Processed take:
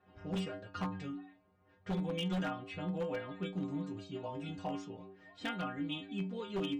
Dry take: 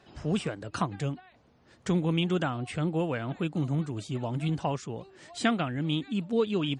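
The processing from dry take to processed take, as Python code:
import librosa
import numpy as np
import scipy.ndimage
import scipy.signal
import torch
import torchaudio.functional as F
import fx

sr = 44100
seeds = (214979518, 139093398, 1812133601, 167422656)

y = fx.env_lowpass(x, sr, base_hz=2000.0, full_db=-24.0)
y = fx.air_absorb(y, sr, metres=53.0)
y = fx.stiff_resonator(y, sr, f0_hz=92.0, decay_s=0.55, stiffness=0.008)
y = 10.0 ** (-34.0 / 20.0) * (np.abs((y / 10.0 ** (-34.0 / 20.0) + 3.0) % 4.0 - 2.0) - 1.0)
y = y * 10.0 ** (5.0 / 20.0)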